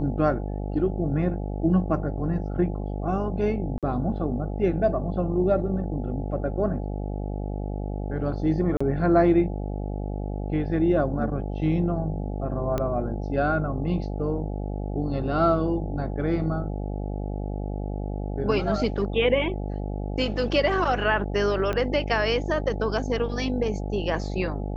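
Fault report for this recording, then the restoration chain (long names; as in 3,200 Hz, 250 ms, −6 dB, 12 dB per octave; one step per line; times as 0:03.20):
mains buzz 50 Hz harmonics 17 −30 dBFS
0:03.78–0:03.83: drop-out 47 ms
0:08.77–0:08.80: drop-out 35 ms
0:12.78: click −14 dBFS
0:21.73: click −15 dBFS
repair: click removal
hum removal 50 Hz, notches 17
repair the gap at 0:03.78, 47 ms
repair the gap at 0:08.77, 35 ms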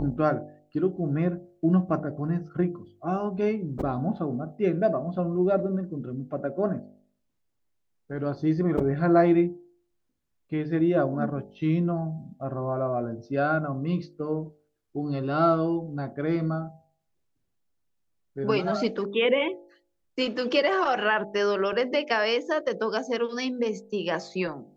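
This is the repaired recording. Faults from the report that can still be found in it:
0:21.73: click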